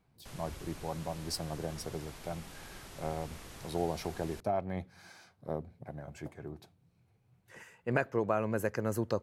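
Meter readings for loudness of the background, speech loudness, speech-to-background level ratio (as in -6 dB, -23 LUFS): -49.5 LUFS, -37.0 LUFS, 12.5 dB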